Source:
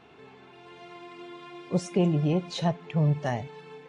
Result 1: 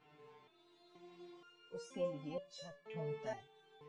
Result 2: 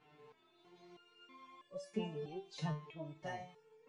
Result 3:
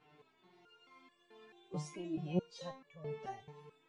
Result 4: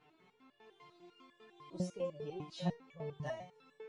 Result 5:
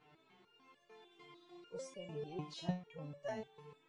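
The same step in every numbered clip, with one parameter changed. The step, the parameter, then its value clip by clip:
stepped resonator, rate: 2.1, 3.1, 4.6, 10, 6.7 Hz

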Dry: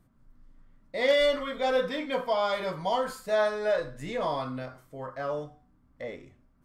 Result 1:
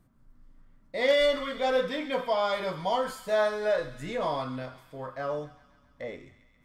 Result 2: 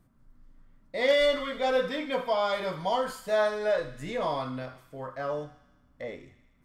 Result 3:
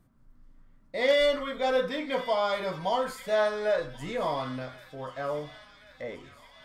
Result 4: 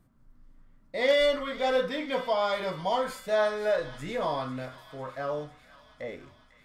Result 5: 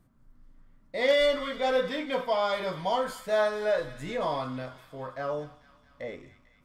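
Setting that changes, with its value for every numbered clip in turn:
thin delay, time: 134, 78, 1082, 499, 223 ms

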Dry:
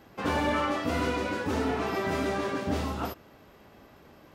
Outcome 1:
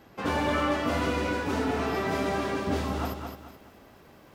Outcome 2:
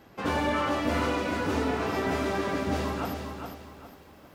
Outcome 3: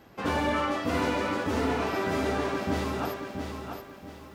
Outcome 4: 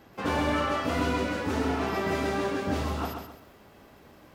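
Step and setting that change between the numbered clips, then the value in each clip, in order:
lo-fi delay, time: 0.215, 0.406, 0.678, 0.132 s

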